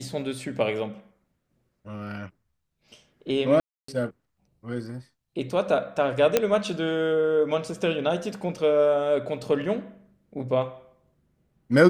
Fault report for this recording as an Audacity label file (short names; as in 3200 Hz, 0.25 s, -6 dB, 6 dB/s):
3.600000	3.880000	gap 0.284 s
6.370000	6.370000	pop -5 dBFS